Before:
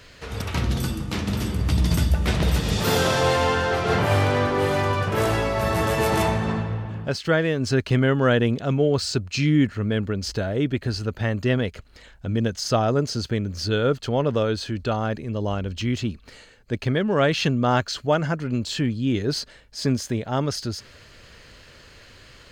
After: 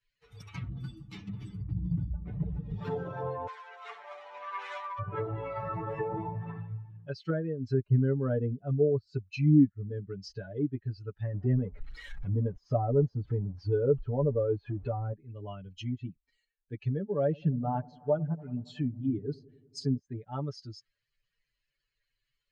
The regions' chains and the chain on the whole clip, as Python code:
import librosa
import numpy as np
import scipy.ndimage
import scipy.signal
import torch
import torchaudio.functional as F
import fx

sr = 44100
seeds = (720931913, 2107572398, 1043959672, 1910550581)

y = fx.chain(x, sr, fx.self_delay(depth_ms=0.34),
    fx.highpass(hz=710.0, slope=12),
    fx.peak_eq(hz=8800.0, db=13.0, octaves=2.7), at=(3.47, 4.99))
y = fx.chain(y, sr, fx.zero_step(step_db=-23.0),
    fx.high_shelf(hz=3800.0, db=-6.0), at=(11.34, 15.13))
y = fx.chain(y, sr, fx.high_shelf(hz=6600.0, db=11.0),
    fx.echo_wet_lowpass(ms=93, feedback_pct=84, hz=1100.0, wet_db=-13), at=(17.23, 19.99))
y = fx.bin_expand(y, sr, power=2.0)
y = fx.env_lowpass_down(y, sr, base_hz=600.0, full_db=-25.5)
y = y + 0.92 * np.pad(y, (int(6.9 * sr / 1000.0), 0))[:len(y)]
y = y * 10.0 ** (-5.0 / 20.0)